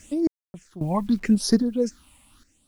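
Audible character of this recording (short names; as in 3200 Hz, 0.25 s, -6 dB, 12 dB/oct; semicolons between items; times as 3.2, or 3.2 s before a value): phasing stages 6, 0.8 Hz, lowest notch 400–2500 Hz; a quantiser's noise floor 10-bit, dither none; random-step tremolo 3.7 Hz, depth 100%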